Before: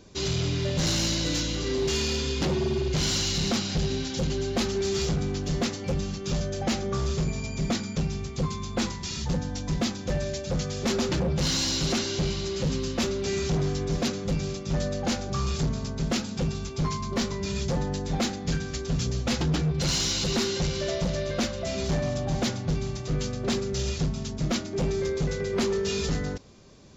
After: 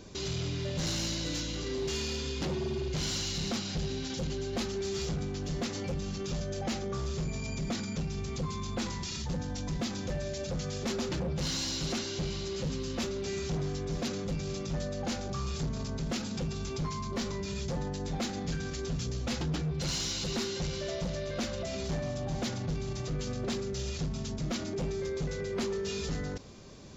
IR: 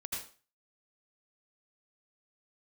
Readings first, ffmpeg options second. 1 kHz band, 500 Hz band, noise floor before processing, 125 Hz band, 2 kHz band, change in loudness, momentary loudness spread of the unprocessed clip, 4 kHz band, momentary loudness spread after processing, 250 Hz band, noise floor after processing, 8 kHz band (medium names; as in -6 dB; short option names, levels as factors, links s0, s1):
-6.0 dB, -6.0 dB, -36 dBFS, -6.5 dB, -6.5 dB, -6.5 dB, 5 LU, -6.5 dB, 4 LU, -6.5 dB, -37 dBFS, -6.5 dB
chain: -af "alimiter=level_in=2.24:limit=0.0631:level=0:latency=1:release=31,volume=0.447,volume=1.33"